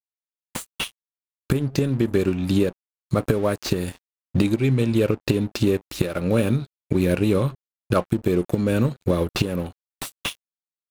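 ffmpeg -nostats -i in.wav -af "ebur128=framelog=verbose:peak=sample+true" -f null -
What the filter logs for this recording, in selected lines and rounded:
Integrated loudness:
  I:         -23.3 LUFS
  Threshold: -33.8 LUFS
Loudness range:
  LRA:         2.5 LU
  Threshold: -43.3 LUFS
  LRA low:   -24.9 LUFS
  LRA high:  -22.4 LUFS
Sample peak:
  Peak:       -4.1 dBFS
True peak:
  Peak:       -4.1 dBFS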